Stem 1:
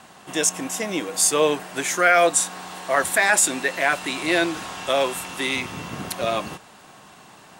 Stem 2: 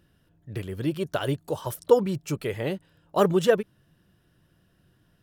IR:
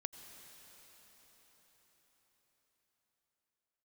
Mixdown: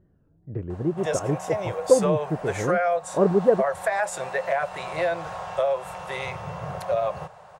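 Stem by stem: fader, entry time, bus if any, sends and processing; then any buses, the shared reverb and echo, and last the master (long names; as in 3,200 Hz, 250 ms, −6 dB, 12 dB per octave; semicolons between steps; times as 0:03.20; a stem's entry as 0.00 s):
+2.5 dB, 0.70 s, no send, drawn EQ curve 160 Hz 0 dB, 260 Hz −29 dB, 540 Hz +5 dB, 3,200 Hz −14 dB, 5,600 Hz −12 dB; downward compressor 6 to 1, threshold −23 dBFS, peak gain reduction 11.5 dB
+2.0 dB, 0.00 s, no send, tape wow and flutter 130 cents; drawn EQ curve 500 Hz 0 dB, 1,600 Hz −11 dB, 3,500 Hz −28 dB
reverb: not used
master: high-shelf EQ 8,800 Hz −12 dB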